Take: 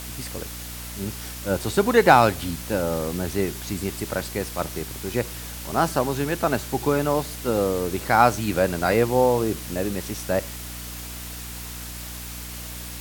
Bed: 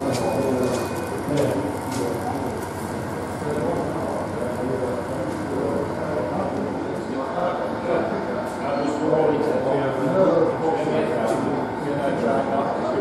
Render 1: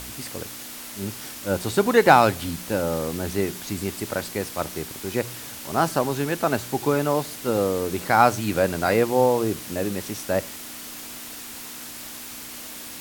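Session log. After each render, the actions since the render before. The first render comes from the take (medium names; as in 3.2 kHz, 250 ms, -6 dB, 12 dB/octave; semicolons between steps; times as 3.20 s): de-hum 60 Hz, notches 3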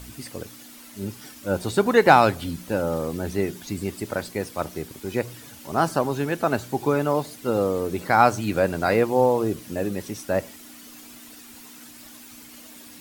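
noise reduction 10 dB, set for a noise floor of -38 dBFS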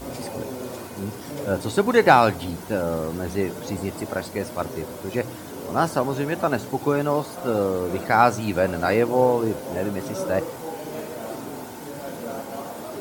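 add bed -11.5 dB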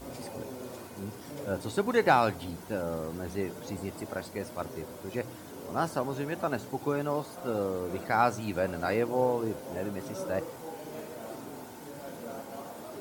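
trim -8.5 dB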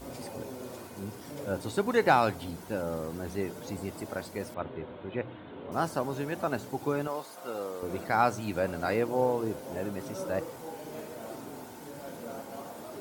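4.54–5.72 s: steep low-pass 3.7 kHz 72 dB/octave; 7.07–7.83 s: high-pass 710 Hz 6 dB/octave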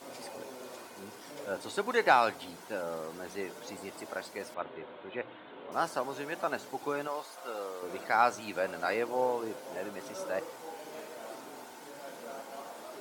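frequency weighting A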